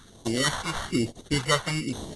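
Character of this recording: aliases and images of a low sample rate 2500 Hz, jitter 0%; phasing stages 2, 1.1 Hz, lowest notch 260–1400 Hz; AAC

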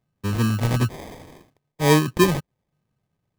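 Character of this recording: phasing stages 2, 1.1 Hz, lowest notch 380–1300 Hz; aliases and images of a low sample rate 1400 Hz, jitter 0%

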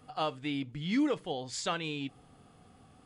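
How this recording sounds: noise floor -60 dBFS; spectral tilt -4.5 dB/oct

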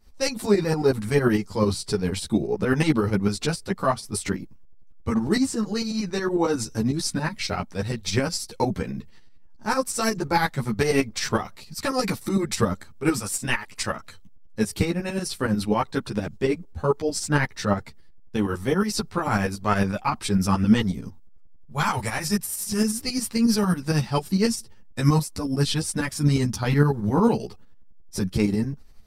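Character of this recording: tremolo saw up 11 Hz, depth 70%; a shimmering, thickened sound

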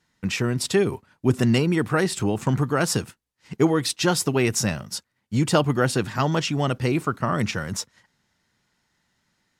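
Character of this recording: noise floor -75 dBFS; spectral tilt -5.0 dB/oct

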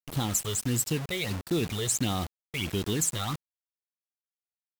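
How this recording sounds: phasing stages 12, 1.5 Hz, lowest notch 260–2300 Hz; a quantiser's noise floor 6-bit, dither none; AAC

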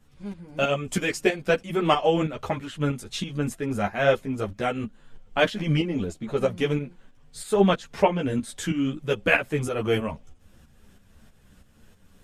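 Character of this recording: tremolo saw up 3.1 Hz, depth 65%; a shimmering, thickened sound

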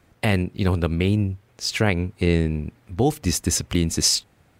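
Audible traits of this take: noise floor -59 dBFS; spectral tilt -4.5 dB/oct

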